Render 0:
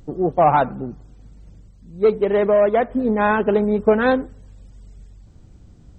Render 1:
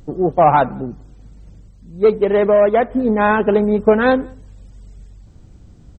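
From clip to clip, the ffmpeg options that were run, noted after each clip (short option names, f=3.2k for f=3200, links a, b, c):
-filter_complex "[0:a]asplit=2[a][b];[b]adelay=186.6,volume=-30dB,highshelf=f=4k:g=-4.2[c];[a][c]amix=inputs=2:normalize=0,volume=3dB"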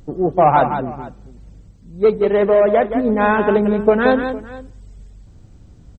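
-af "aecho=1:1:174|456:0.398|0.106,volume=-1dB"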